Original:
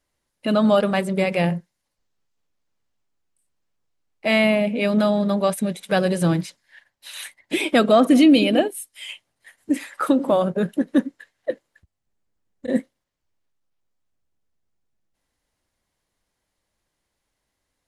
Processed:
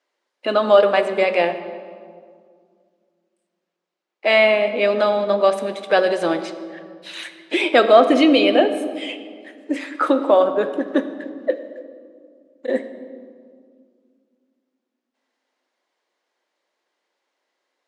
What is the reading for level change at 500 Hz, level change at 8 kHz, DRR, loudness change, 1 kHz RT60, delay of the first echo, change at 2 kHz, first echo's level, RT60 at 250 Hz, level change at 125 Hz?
+5.0 dB, can't be measured, 9.0 dB, +2.0 dB, 1.9 s, no echo audible, +4.5 dB, no echo audible, 2.8 s, below −10 dB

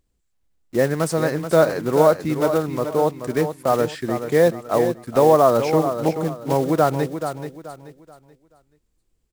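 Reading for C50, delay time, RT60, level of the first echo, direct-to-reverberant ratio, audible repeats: no reverb audible, 431 ms, no reverb audible, −9.0 dB, no reverb audible, 3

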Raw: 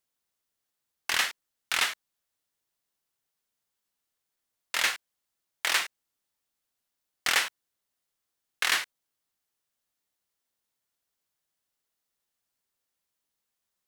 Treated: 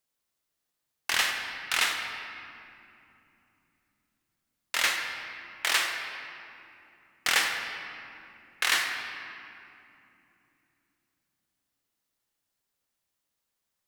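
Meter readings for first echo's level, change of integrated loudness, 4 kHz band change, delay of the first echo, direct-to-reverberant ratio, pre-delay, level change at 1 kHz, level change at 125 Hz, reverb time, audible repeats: no echo audible, −0.5 dB, +1.0 dB, no echo audible, 3.0 dB, 32 ms, +1.5 dB, can't be measured, 2.9 s, no echo audible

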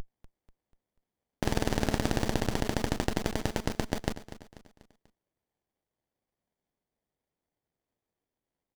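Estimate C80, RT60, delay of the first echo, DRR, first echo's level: no reverb audible, no reverb audible, 244 ms, no reverb audible, −14.0 dB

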